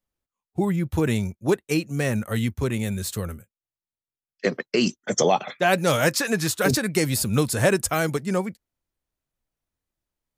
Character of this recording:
background noise floor −95 dBFS
spectral slope −4.5 dB per octave

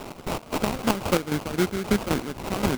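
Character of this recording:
a quantiser's noise floor 6 bits, dither triangular
chopped level 3.8 Hz, depth 65%, duty 45%
aliases and images of a low sample rate 1,800 Hz, jitter 20%

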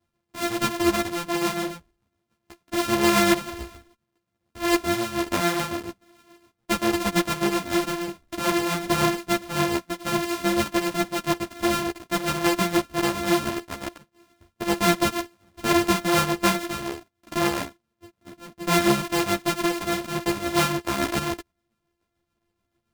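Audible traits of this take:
a buzz of ramps at a fixed pitch in blocks of 128 samples
tremolo triangle 7 Hz, depth 55%
a shimmering, thickened sound

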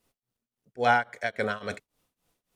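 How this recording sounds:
tremolo triangle 3.6 Hz, depth 95%

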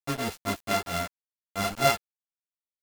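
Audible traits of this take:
a buzz of ramps at a fixed pitch in blocks of 64 samples
tremolo triangle 4.4 Hz, depth 85%
a quantiser's noise floor 6 bits, dither none
a shimmering, thickened sound

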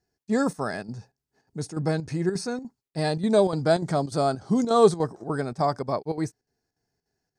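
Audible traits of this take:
chopped level 3.4 Hz, depth 60%, duty 80%

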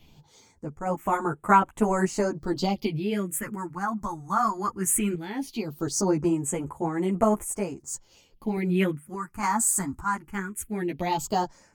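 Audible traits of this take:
phaser sweep stages 4, 0.18 Hz, lowest notch 500–4,800 Hz
sample-and-hold tremolo
a shimmering, thickened sound

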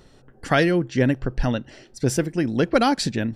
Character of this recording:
background noise floor −53 dBFS
spectral slope −5.0 dB per octave

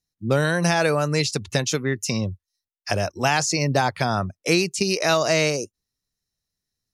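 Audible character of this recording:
background noise floor −89 dBFS
spectral slope −4.0 dB per octave

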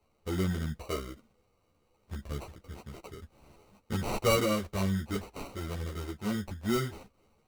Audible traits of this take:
aliases and images of a low sample rate 1,700 Hz, jitter 0%
a shimmering, thickened sound

